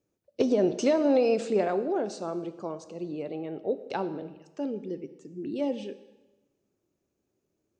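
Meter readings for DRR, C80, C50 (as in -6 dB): 11.5 dB, 15.5 dB, 13.5 dB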